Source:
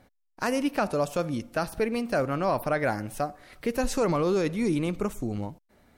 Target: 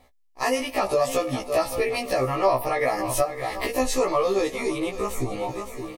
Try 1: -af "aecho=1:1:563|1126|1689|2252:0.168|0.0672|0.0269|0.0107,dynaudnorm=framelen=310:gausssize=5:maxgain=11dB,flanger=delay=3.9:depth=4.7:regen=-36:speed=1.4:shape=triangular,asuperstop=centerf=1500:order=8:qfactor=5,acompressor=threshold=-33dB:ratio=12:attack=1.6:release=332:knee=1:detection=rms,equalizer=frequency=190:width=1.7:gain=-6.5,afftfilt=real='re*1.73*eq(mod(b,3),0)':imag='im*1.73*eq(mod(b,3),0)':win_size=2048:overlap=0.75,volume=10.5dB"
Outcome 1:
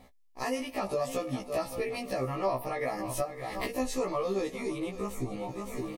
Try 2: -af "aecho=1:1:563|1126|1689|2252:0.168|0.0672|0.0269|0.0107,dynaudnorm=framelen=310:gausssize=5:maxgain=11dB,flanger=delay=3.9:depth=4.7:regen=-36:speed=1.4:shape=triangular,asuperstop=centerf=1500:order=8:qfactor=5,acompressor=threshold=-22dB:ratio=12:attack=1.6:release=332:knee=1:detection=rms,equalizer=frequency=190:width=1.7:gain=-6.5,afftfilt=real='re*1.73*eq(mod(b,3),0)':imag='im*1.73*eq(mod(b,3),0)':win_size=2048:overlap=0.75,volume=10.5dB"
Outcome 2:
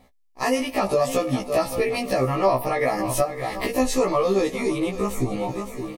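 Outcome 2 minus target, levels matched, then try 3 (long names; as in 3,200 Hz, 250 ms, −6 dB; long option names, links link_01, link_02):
250 Hz band +3.5 dB
-af "aecho=1:1:563|1126|1689|2252:0.168|0.0672|0.0269|0.0107,dynaudnorm=framelen=310:gausssize=5:maxgain=11dB,flanger=delay=3.9:depth=4.7:regen=-36:speed=1.4:shape=triangular,asuperstop=centerf=1500:order=8:qfactor=5,acompressor=threshold=-22dB:ratio=12:attack=1.6:release=332:knee=1:detection=rms,equalizer=frequency=190:width=1.7:gain=-17.5,afftfilt=real='re*1.73*eq(mod(b,3),0)':imag='im*1.73*eq(mod(b,3),0)':win_size=2048:overlap=0.75,volume=10.5dB"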